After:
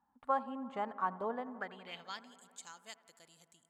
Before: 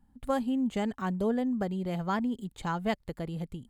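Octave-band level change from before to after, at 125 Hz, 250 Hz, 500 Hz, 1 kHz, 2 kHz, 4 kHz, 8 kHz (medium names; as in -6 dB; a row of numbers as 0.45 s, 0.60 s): -23.5 dB, -17.5 dB, -9.0 dB, -2.0 dB, -6.0 dB, -5.5 dB, no reading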